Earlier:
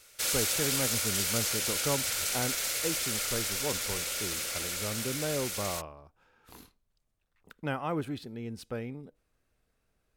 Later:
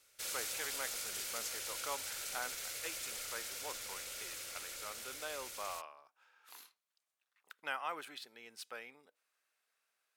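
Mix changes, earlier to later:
speech: add high-pass filter 1,100 Hz 12 dB per octave
background −11.5 dB

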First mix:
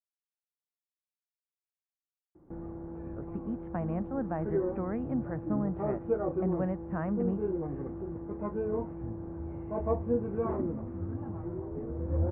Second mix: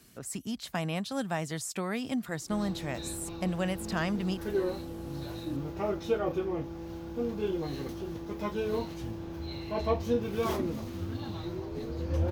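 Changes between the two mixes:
speech: entry −3.00 s
master: remove Gaussian smoothing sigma 6.6 samples

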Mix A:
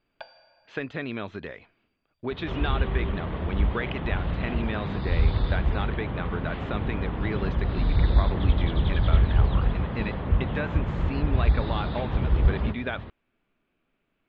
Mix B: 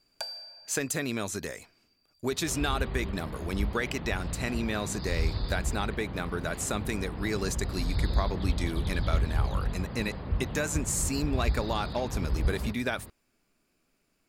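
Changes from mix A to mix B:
second sound −8.0 dB
master: remove elliptic low-pass filter 3,400 Hz, stop band 80 dB

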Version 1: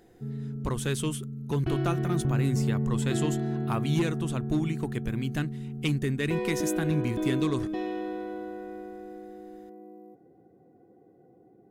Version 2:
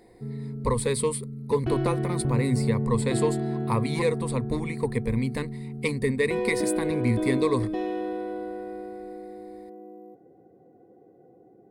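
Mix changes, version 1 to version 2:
speech: add EQ curve with evenly spaced ripples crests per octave 0.94, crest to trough 17 dB
master: add parametric band 540 Hz +5.5 dB 1.2 octaves

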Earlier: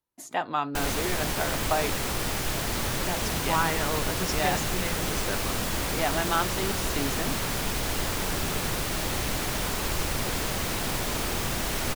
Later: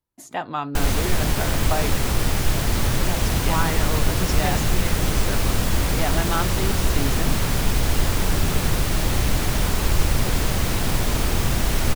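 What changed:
background +3.0 dB
master: add low-shelf EQ 170 Hz +11 dB

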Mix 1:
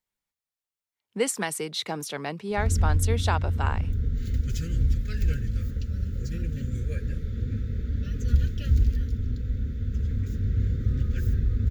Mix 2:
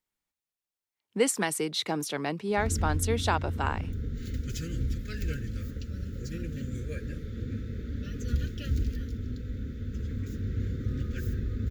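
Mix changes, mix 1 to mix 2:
background: add low-shelf EQ 110 Hz −11 dB
master: add parametric band 310 Hz +5 dB 0.45 octaves

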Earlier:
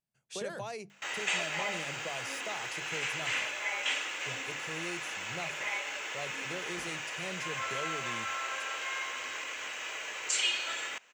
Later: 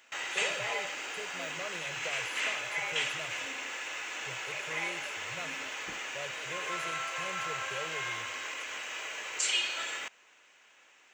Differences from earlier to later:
speech: add phaser with its sweep stopped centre 1,300 Hz, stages 8
background: entry −0.90 s

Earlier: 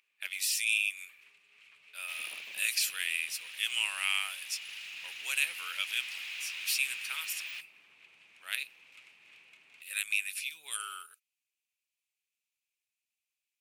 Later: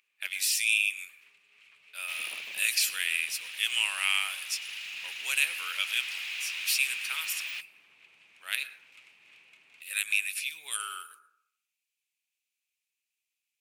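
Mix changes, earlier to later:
second sound +4.0 dB
reverb: on, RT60 0.70 s

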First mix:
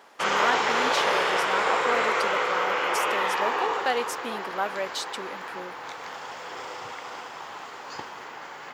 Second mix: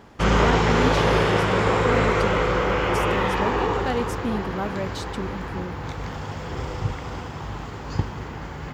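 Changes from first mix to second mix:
speech −5.0 dB
master: remove high-pass filter 650 Hz 12 dB per octave

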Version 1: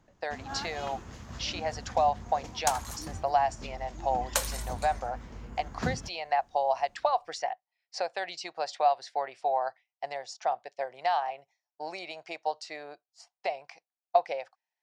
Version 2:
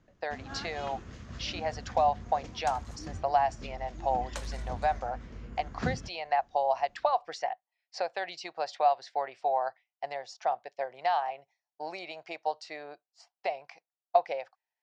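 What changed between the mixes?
first sound: add parametric band 860 Hz −9 dB 0.54 octaves
second sound −9.5 dB
master: add high-frequency loss of the air 80 metres

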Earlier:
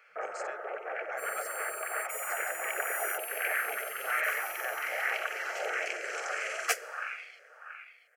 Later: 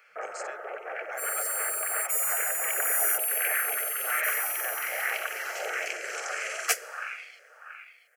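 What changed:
second sound: add spectral tilt +1.5 dB per octave
master: add high-shelf EQ 4,100 Hz +8 dB

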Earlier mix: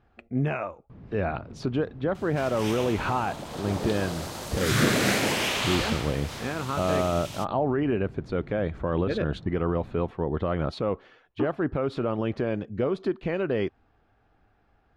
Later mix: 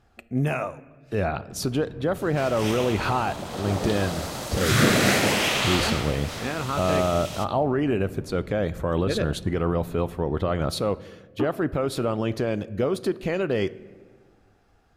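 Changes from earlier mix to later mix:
speech: remove low-pass filter 2,900 Hz 12 dB per octave
first sound: entry +0.60 s
reverb: on, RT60 1.6 s

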